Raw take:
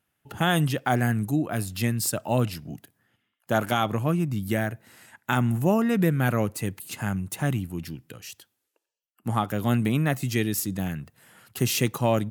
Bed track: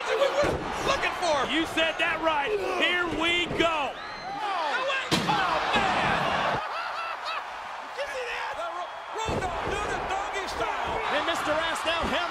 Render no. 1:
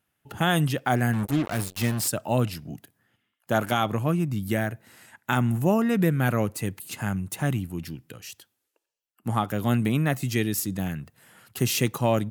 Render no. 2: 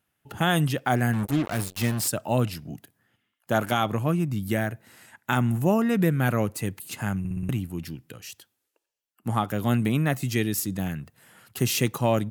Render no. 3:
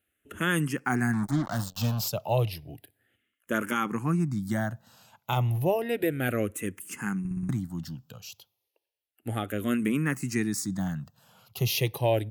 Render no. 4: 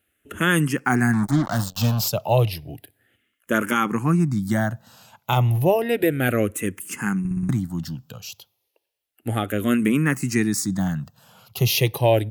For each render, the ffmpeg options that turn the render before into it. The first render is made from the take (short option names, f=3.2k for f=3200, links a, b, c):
-filter_complex "[0:a]asettb=1/sr,asplit=3[a][b][c];[a]atrim=end=1.134[d];[b]atrim=start=1.13:end=2.08,asetpts=PTS-STARTPTS,afade=t=in:d=0.004:c=qsin,afade=t=out:st=0.946:d=0.004:c=qsin,acrusher=bits=4:mix=0:aa=0.5[e];[c]atrim=start=2.076[f];[d][e]acrossfade=d=0.004:c1=hsin:c2=qsin[g];[g][f]acrossfade=d=0.004:c1=qsin:c2=hsin"
-filter_complex "[0:a]asplit=6[a][b][c][d][e][f];[a]atrim=end=7.252[g];[b]atrim=start=7.188:end=7.252[h];[c]atrim=start=7.188:end=7.252[i];[d]atrim=start=7.188:end=7.252[j];[e]atrim=start=7.188:end=7.252[k];[f]atrim=start=7.488[l];[g][h]acrossfade=d=0.004:c1=hsin:c2=hsin[m];[m][i]acrossfade=d=0.004:c1=hsin:c2=hsin[n];[n][j]acrossfade=d=0.004:c1=hsin:c2=hsin[o];[o][k]acrossfade=d=0.004:c1=hsin:c2=hsin[p];[p][l]acrossfade=d=0.004:c1=hsin:c2=hsin"
-filter_complex "[0:a]asplit=2[a][b];[b]afreqshift=-0.32[c];[a][c]amix=inputs=2:normalize=1"
-af "volume=7dB"